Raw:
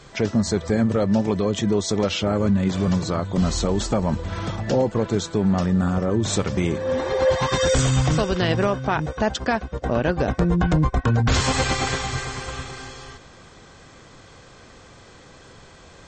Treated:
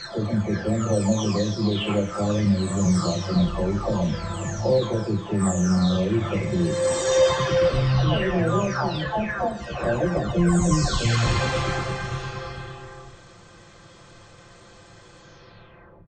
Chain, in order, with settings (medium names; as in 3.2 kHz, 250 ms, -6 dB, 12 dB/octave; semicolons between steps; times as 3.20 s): delay that grows with frequency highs early, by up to 885 ms; doubling 29 ms -10.5 dB; Schroeder reverb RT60 0.91 s, DRR 12 dB